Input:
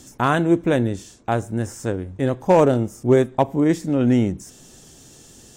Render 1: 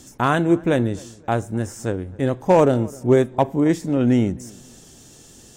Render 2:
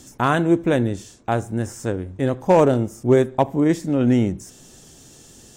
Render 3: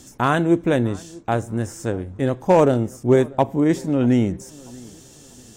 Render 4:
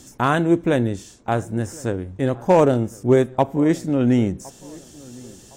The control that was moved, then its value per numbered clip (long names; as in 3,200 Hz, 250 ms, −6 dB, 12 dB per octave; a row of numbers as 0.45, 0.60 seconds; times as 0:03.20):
delay with a low-pass on its return, delay time: 261, 74, 639, 1,062 milliseconds